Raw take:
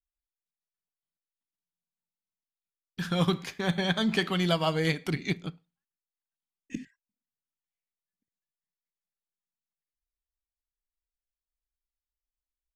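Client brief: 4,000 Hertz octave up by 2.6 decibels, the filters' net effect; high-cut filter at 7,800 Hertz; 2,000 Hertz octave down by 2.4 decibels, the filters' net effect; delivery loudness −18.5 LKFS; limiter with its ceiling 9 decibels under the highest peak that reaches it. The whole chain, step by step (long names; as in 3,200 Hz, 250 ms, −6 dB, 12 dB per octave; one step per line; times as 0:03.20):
low-pass filter 7,800 Hz
parametric band 2,000 Hz −4 dB
parametric band 4,000 Hz +5 dB
level +14 dB
brickwall limiter −7 dBFS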